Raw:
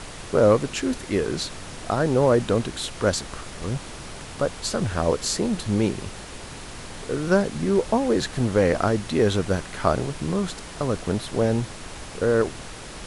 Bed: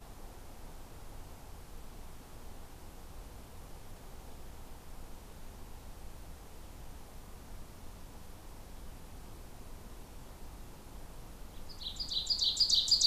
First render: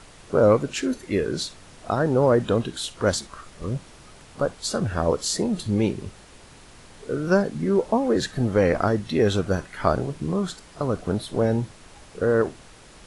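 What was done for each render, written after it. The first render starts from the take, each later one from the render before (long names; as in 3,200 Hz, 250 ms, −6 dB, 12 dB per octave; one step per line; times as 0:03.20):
noise reduction from a noise print 10 dB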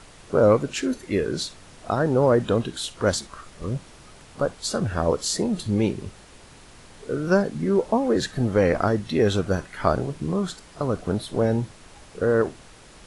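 no processing that can be heard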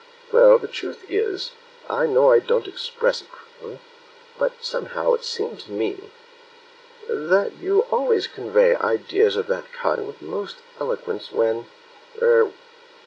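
Chebyshev band-pass filter 260–4,400 Hz, order 3
comb filter 2.1 ms, depth 93%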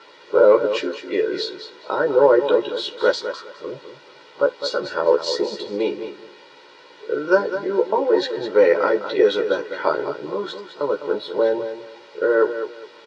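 double-tracking delay 14 ms −4 dB
repeating echo 206 ms, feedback 23%, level −10 dB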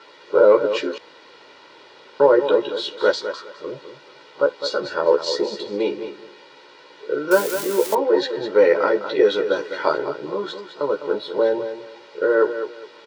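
0:00.98–0:02.20: fill with room tone
0:07.31–0:07.95: spike at every zero crossing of −16.5 dBFS
0:09.56–0:09.98: high-shelf EQ 4,700 Hz +8.5 dB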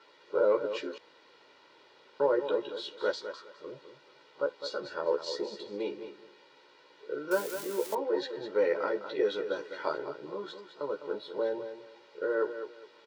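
level −12.5 dB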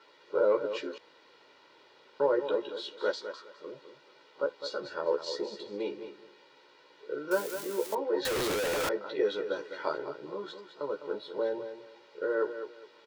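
0:02.54–0:04.44: high-pass filter 150 Hz 24 dB per octave
0:08.25–0:08.89: sign of each sample alone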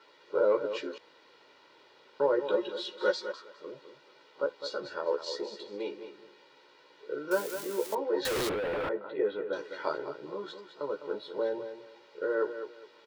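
0:02.49–0:03.32: comb filter 5.5 ms, depth 83%
0:04.98–0:06.14: high-pass filter 290 Hz 6 dB per octave
0:08.49–0:09.53: high-frequency loss of the air 440 metres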